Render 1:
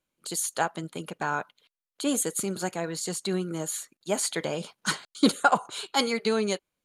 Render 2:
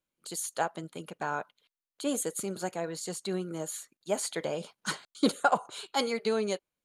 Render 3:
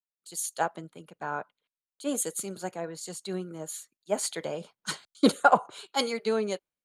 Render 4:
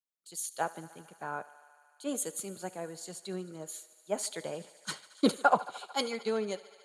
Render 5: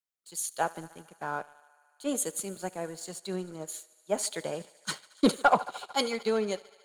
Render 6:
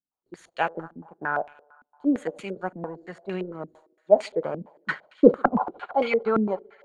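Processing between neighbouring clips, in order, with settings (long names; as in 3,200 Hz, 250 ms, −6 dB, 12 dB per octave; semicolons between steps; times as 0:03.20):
dynamic equaliser 570 Hz, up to +5 dB, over −39 dBFS, Q 1.2; level −6 dB
multiband upward and downward expander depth 70%
feedback echo with a high-pass in the loop 74 ms, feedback 85%, high-pass 340 Hz, level −19 dB; level −4.5 dB
leveller curve on the samples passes 1
low-pass on a step sequencer 8.8 Hz 250–2,500 Hz; level +2.5 dB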